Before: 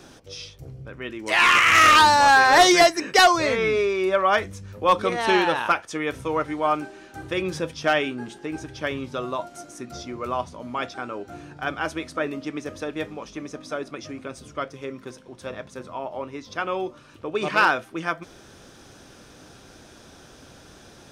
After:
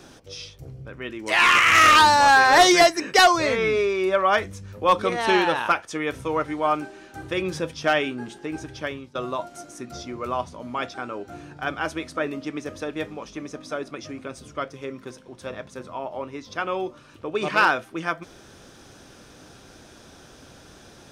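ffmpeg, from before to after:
ffmpeg -i in.wav -filter_complex "[0:a]asplit=2[link_01][link_02];[link_01]atrim=end=9.15,asetpts=PTS-STARTPTS,afade=type=out:start_time=8.76:duration=0.39:silence=0.112202[link_03];[link_02]atrim=start=9.15,asetpts=PTS-STARTPTS,afade=type=in:duration=0.004:curve=hsin:silence=0.112202[link_04];[link_03][link_04]concat=n=2:v=0:a=1" out.wav

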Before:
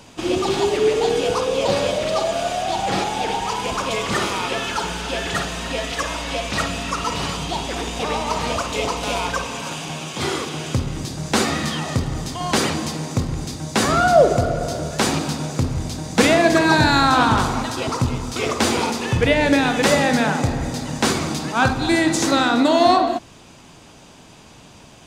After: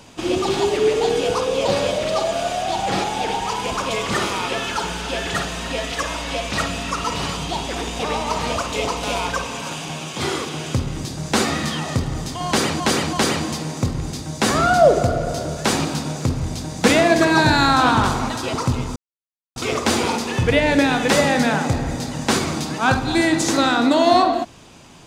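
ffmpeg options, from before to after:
ffmpeg -i in.wav -filter_complex "[0:a]asplit=4[link_01][link_02][link_03][link_04];[link_01]atrim=end=12.802[link_05];[link_02]atrim=start=12.468:end=12.802[link_06];[link_03]atrim=start=12.468:end=18.3,asetpts=PTS-STARTPTS,afade=type=out:start_time=5.828:duration=0.004:curve=hsin,apad=pad_dur=0.6[link_07];[link_04]atrim=start=18.3,asetpts=PTS-STARTPTS,afade=type=in:duration=0.004:curve=hsin[link_08];[link_05][link_06]acrossfade=duration=0.004:curve1=hsin:curve2=hsin[link_09];[link_07][link_08]concat=n=2:v=0:a=1[link_10];[link_09][link_10]acrossfade=duration=0.004:curve1=hsin:curve2=hsin" out.wav

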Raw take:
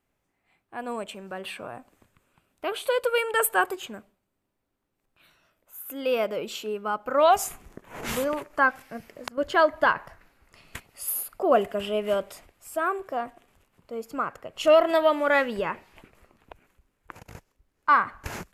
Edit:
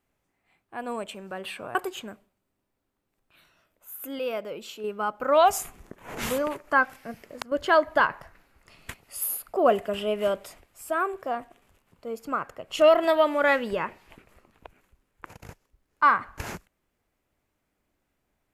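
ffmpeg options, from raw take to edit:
ffmpeg -i in.wav -filter_complex "[0:a]asplit=4[link_01][link_02][link_03][link_04];[link_01]atrim=end=1.752[link_05];[link_02]atrim=start=3.608:end=6.052[link_06];[link_03]atrim=start=6.048:end=6.702,asetpts=PTS-STARTPTS,volume=-5.5dB[link_07];[link_04]atrim=start=6.698[link_08];[link_05][link_06]acrossfade=duration=0.004:curve1=hsin:curve2=hsin[link_09];[link_09][link_07]acrossfade=duration=0.004:curve1=hsin:curve2=hsin[link_10];[link_10][link_08]acrossfade=duration=0.004:curve1=hsin:curve2=hsin" out.wav

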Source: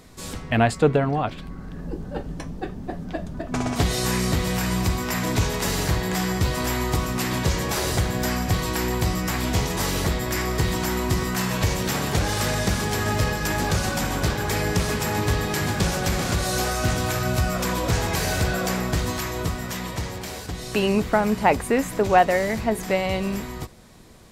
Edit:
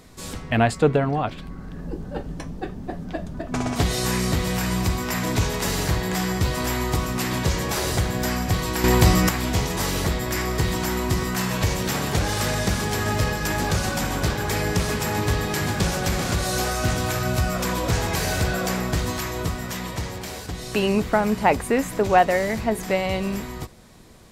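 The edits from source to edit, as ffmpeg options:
ffmpeg -i in.wav -filter_complex "[0:a]asplit=3[link_01][link_02][link_03];[link_01]atrim=end=8.842[link_04];[link_02]atrim=start=8.838:end=9.292,asetpts=PTS-STARTPTS,volume=7.5dB[link_05];[link_03]atrim=start=9.288[link_06];[link_04][link_05]acrossfade=duration=0.004:curve1=hsin:curve2=hsin[link_07];[link_07][link_06]acrossfade=duration=0.004:curve1=hsin:curve2=hsin" out.wav

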